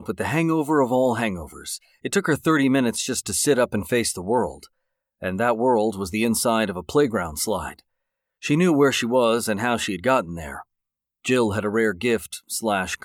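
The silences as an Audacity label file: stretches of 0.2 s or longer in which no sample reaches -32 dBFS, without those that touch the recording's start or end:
1.760000	2.050000	silence
4.630000	5.230000	silence
7.790000	8.430000	silence
10.610000	11.250000	silence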